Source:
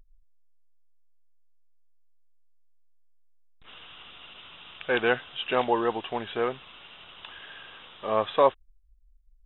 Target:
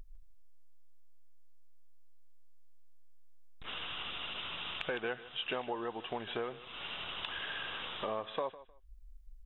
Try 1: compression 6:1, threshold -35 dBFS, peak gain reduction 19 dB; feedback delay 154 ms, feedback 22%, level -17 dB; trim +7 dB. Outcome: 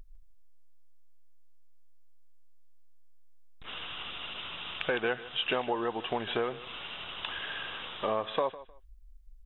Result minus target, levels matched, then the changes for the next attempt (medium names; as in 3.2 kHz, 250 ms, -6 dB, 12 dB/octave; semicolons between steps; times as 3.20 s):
compression: peak gain reduction -6.5 dB
change: compression 6:1, threshold -43 dBFS, peak gain reduction 25.5 dB